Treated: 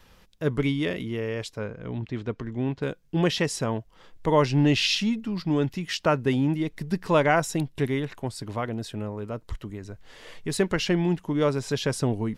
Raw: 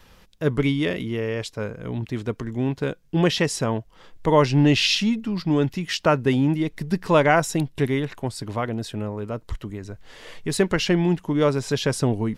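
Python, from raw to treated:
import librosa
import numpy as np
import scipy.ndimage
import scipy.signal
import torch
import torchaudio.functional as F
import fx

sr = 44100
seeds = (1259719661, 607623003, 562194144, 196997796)

y = fx.lowpass(x, sr, hz=4500.0, slope=12, at=(1.59, 2.82))
y = y * 10.0 ** (-3.5 / 20.0)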